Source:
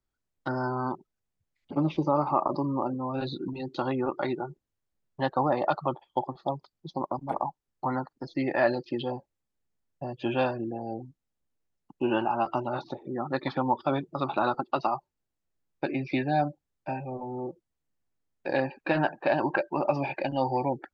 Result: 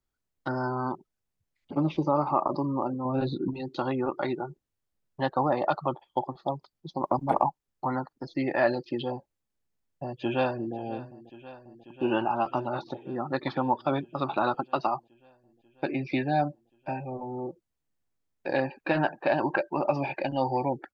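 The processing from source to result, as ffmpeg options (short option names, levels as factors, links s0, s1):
-filter_complex "[0:a]asettb=1/sr,asplit=3[s0][s1][s2];[s0]atrim=end=3.054[s3];[s1]atrim=start=3.05:end=3.51,asetpts=PTS-STARTPTS,afade=t=in:d=0.004:c=qsin,afade=t=out:st=0.456:d=0.004:c=qsin,tiltshelf=f=1200:g=5[s4];[s2]atrim=start=3.506[s5];[s3][s4]acrossfade=d=0.004:c1=hsin:c2=qsin[s6];[s6][s5]acrossfade=d=0.004:c1=qsin:c2=hsin,asplit=3[s7][s8][s9];[s7]afade=t=out:st=7.03:d=0.02[s10];[s8]acontrast=57,afade=t=in:st=7.03:d=0.02,afade=t=out:st=7.48:d=0.02[s11];[s9]afade=t=in:st=7.48:d=0.02[s12];[s10][s11][s12]amix=inputs=3:normalize=0,asplit=2[s13][s14];[s14]afade=t=in:st=10.03:d=0.01,afade=t=out:st=10.75:d=0.01,aecho=0:1:540|1080|1620|2160|2700|3240|3780|4320|4860|5400|5940|6480:0.141254|0.113003|0.0904024|0.0723219|0.0578575|0.046286|0.0370288|0.0296231|0.0236984|0.0189588|0.015167|0.0121336[s15];[s13][s15]amix=inputs=2:normalize=0"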